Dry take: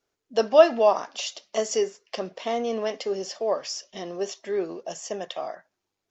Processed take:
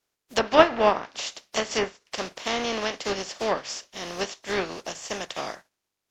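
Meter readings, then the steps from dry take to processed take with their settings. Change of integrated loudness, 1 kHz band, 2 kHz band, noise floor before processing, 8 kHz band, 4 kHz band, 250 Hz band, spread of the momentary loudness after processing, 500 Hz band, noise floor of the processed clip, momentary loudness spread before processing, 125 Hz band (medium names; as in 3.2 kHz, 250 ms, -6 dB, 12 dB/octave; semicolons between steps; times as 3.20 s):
-1.0 dB, +2.5 dB, +8.0 dB, -83 dBFS, no reading, +4.0 dB, +1.5 dB, 15 LU, -3.5 dB, -84 dBFS, 17 LU, +5.0 dB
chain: spectral contrast reduction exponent 0.44; low-pass that closes with the level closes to 1.9 kHz, closed at -18 dBFS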